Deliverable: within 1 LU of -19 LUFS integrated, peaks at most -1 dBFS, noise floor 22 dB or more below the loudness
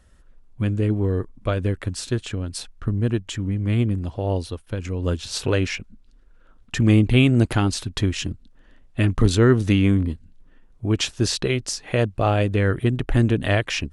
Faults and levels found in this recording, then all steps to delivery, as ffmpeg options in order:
loudness -22.5 LUFS; peak -5.0 dBFS; loudness target -19.0 LUFS
-> -af "volume=3.5dB"

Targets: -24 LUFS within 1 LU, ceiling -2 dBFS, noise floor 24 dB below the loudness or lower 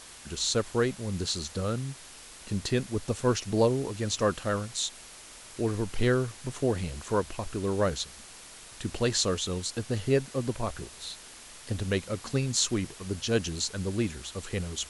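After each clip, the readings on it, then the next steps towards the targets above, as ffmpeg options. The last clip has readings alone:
noise floor -48 dBFS; noise floor target -54 dBFS; loudness -30.0 LUFS; peak -10.0 dBFS; loudness target -24.0 LUFS
-> -af "afftdn=nr=6:nf=-48"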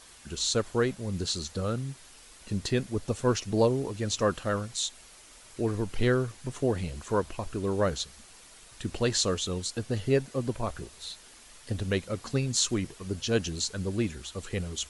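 noise floor -53 dBFS; noise floor target -54 dBFS
-> -af "afftdn=nr=6:nf=-53"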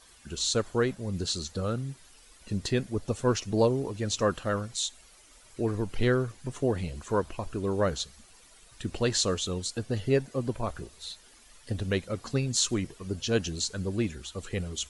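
noise floor -56 dBFS; loudness -30.0 LUFS; peak -10.0 dBFS; loudness target -24.0 LUFS
-> -af "volume=6dB"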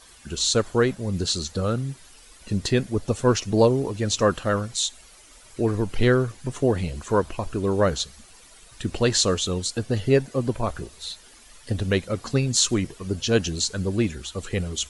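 loudness -24.0 LUFS; peak -4.0 dBFS; noise floor -50 dBFS

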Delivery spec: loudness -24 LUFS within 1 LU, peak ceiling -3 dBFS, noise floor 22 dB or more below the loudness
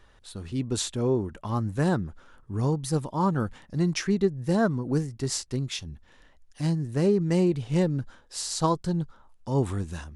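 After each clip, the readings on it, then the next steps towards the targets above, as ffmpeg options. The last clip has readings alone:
loudness -27.5 LUFS; peak -11.0 dBFS; loudness target -24.0 LUFS
-> -af "volume=3.5dB"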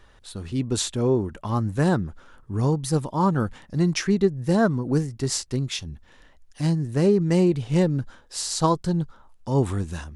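loudness -24.0 LUFS; peak -7.5 dBFS; noise floor -54 dBFS

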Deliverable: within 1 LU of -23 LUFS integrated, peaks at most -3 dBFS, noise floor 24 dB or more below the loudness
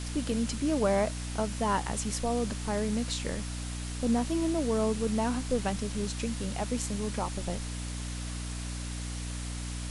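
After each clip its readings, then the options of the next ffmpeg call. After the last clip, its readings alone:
hum 60 Hz; harmonics up to 300 Hz; hum level -34 dBFS; noise floor -37 dBFS; noise floor target -56 dBFS; loudness -31.5 LUFS; peak -15.0 dBFS; loudness target -23.0 LUFS
-> -af "bandreject=f=60:t=h:w=4,bandreject=f=120:t=h:w=4,bandreject=f=180:t=h:w=4,bandreject=f=240:t=h:w=4,bandreject=f=300:t=h:w=4"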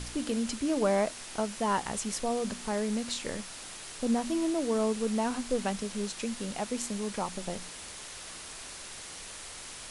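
hum none; noise floor -44 dBFS; noise floor target -57 dBFS
-> -af "afftdn=nr=13:nf=-44"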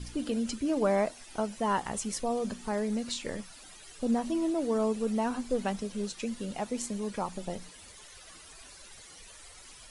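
noise floor -51 dBFS; noise floor target -56 dBFS
-> -af "afftdn=nr=6:nf=-51"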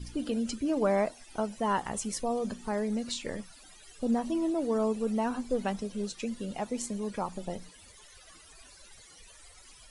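noise floor -54 dBFS; noise floor target -56 dBFS
-> -af "afftdn=nr=6:nf=-54"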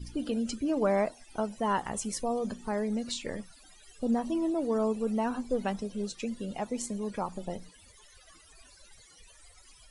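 noise floor -57 dBFS; loudness -32.0 LUFS; peak -16.5 dBFS; loudness target -23.0 LUFS
-> -af "volume=9dB"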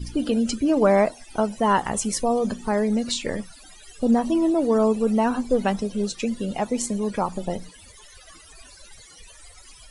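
loudness -23.0 LUFS; peak -7.5 dBFS; noise floor -48 dBFS

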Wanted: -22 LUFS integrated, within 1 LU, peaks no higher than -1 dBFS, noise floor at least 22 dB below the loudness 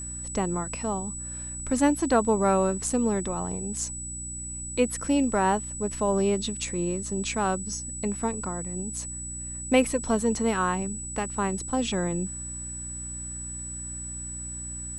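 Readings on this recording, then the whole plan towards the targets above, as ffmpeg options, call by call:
hum 60 Hz; harmonics up to 300 Hz; hum level -38 dBFS; steady tone 7900 Hz; tone level -35 dBFS; loudness -28.0 LUFS; peak -8.0 dBFS; loudness target -22.0 LUFS
-> -af "bandreject=f=60:t=h:w=4,bandreject=f=120:t=h:w=4,bandreject=f=180:t=h:w=4,bandreject=f=240:t=h:w=4,bandreject=f=300:t=h:w=4"
-af "bandreject=f=7.9k:w=30"
-af "volume=6dB"

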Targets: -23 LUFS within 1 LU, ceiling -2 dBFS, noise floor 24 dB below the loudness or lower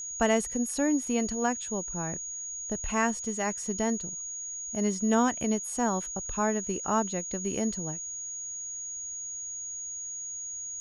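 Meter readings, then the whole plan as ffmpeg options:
steady tone 6700 Hz; tone level -35 dBFS; loudness -30.0 LUFS; peak -11.0 dBFS; loudness target -23.0 LUFS
-> -af "bandreject=f=6.7k:w=30"
-af "volume=7dB"

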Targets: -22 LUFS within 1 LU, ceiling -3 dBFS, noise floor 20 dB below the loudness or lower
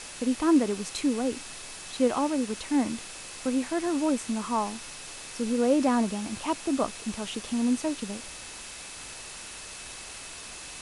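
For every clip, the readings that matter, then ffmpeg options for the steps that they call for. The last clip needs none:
steady tone 2600 Hz; tone level -51 dBFS; noise floor -42 dBFS; noise floor target -50 dBFS; loudness -29.5 LUFS; peak -12.0 dBFS; loudness target -22.0 LUFS
-> -af "bandreject=f=2.6k:w=30"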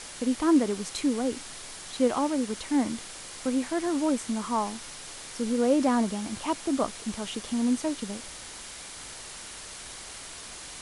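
steady tone none; noise floor -43 dBFS; noise floor target -49 dBFS
-> -af "afftdn=nr=6:nf=-43"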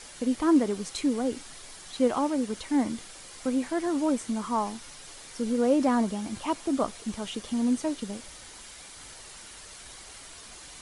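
noise floor -47 dBFS; noise floor target -48 dBFS
-> -af "afftdn=nr=6:nf=-47"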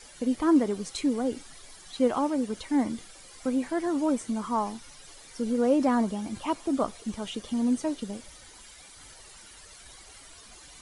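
noise floor -50 dBFS; loudness -28.5 LUFS; peak -12.5 dBFS; loudness target -22.0 LUFS
-> -af "volume=6.5dB"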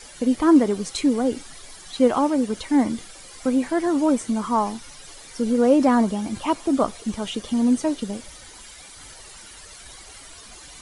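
loudness -22.0 LUFS; peak -6.0 dBFS; noise floor -44 dBFS

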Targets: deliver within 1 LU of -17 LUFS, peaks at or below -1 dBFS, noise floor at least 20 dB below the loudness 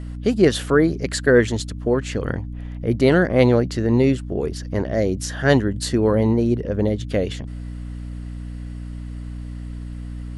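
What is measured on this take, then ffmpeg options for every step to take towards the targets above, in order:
hum 60 Hz; harmonics up to 300 Hz; hum level -28 dBFS; loudness -20.0 LUFS; peak -2.0 dBFS; loudness target -17.0 LUFS
-> -af "bandreject=f=60:t=h:w=4,bandreject=f=120:t=h:w=4,bandreject=f=180:t=h:w=4,bandreject=f=240:t=h:w=4,bandreject=f=300:t=h:w=4"
-af "volume=3dB,alimiter=limit=-1dB:level=0:latency=1"

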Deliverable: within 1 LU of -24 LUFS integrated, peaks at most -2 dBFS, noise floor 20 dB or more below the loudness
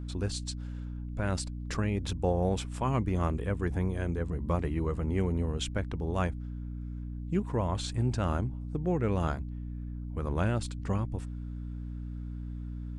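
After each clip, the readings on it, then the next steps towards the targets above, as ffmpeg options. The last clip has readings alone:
hum 60 Hz; harmonics up to 300 Hz; hum level -35 dBFS; loudness -33.0 LUFS; peak -15.5 dBFS; loudness target -24.0 LUFS
-> -af "bandreject=f=60:t=h:w=4,bandreject=f=120:t=h:w=4,bandreject=f=180:t=h:w=4,bandreject=f=240:t=h:w=4,bandreject=f=300:t=h:w=4"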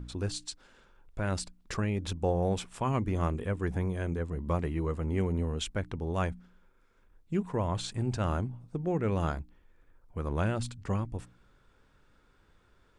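hum none; loudness -33.0 LUFS; peak -15.5 dBFS; loudness target -24.0 LUFS
-> -af "volume=9dB"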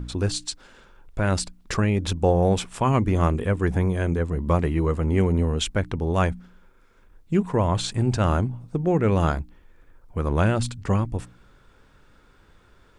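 loudness -24.0 LUFS; peak -6.5 dBFS; noise floor -56 dBFS

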